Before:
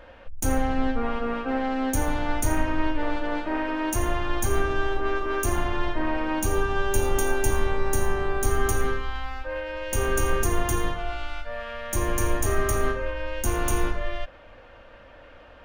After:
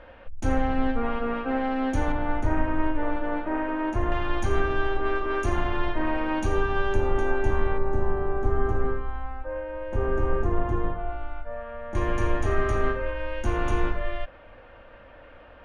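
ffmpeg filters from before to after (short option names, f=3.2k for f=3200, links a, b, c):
-af "asetnsamples=n=441:p=0,asendcmd='2.12 lowpass f 1800;4.12 lowpass f 3600;6.94 lowpass f 2000;7.78 lowpass f 1100;11.95 lowpass f 2900',lowpass=3.3k"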